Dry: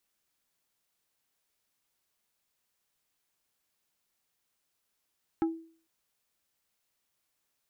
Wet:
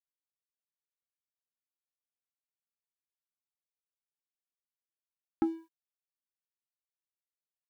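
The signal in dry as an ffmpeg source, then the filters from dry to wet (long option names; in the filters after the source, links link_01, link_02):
-f lavfi -i "aevalsrc='0.0794*pow(10,-3*t/0.46)*sin(2*PI*327*t)+0.0316*pow(10,-3*t/0.153)*sin(2*PI*817.5*t)+0.0126*pow(10,-3*t/0.087)*sin(2*PI*1308*t)+0.00501*pow(10,-3*t/0.067)*sin(2*PI*1635*t)+0.002*pow(10,-3*t/0.049)*sin(2*PI*2125.5*t)':duration=0.45:sample_rate=44100"
-af "equalizer=frequency=250:width_type=o:width=0.23:gain=12.5,aeval=exprs='sgn(val(0))*max(abs(val(0))-0.00168,0)':channel_layout=same"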